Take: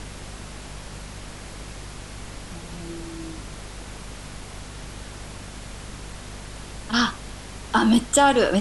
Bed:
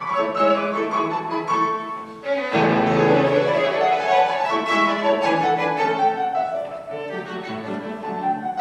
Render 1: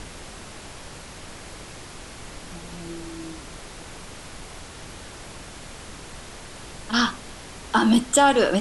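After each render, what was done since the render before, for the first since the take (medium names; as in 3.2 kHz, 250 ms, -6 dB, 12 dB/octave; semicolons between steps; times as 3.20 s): de-hum 50 Hz, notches 5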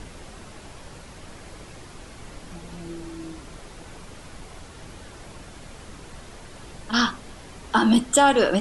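noise reduction 6 dB, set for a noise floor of -41 dBFS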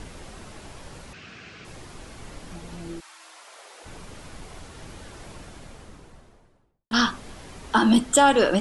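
1.13–1.65 s: cabinet simulation 120–6000 Hz, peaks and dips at 310 Hz -5 dB, 560 Hz -9 dB, 910 Hz -10 dB, 1.5 kHz +6 dB, 2.6 kHz +10 dB; 2.99–3.84 s: high-pass 1 kHz -> 420 Hz 24 dB/octave; 5.29–6.91 s: studio fade out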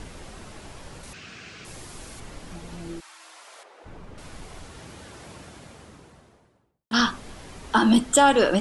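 1.03–2.20 s: treble shelf 6.6 kHz +11.5 dB; 3.63–4.18 s: low-pass 1.2 kHz 6 dB/octave; 4.79–7.00 s: high-pass 74 Hz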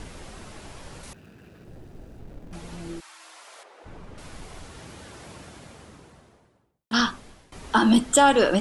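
1.13–2.53 s: median filter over 41 samples; 6.93–7.52 s: fade out, to -18 dB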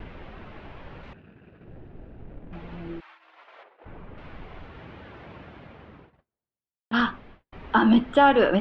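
low-pass 2.9 kHz 24 dB/octave; gate -49 dBFS, range -35 dB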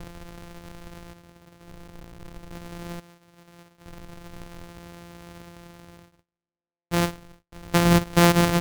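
sorted samples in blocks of 256 samples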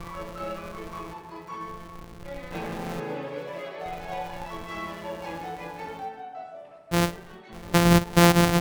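add bed -17 dB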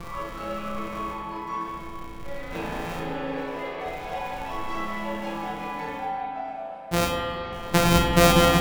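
flutter echo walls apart 5.7 m, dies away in 0.36 s; spring tank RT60 2.9 s, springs 37/48 ms, chirp 65 ms, DRR -0.5 dB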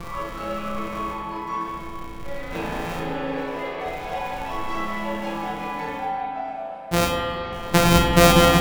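trim +3 dB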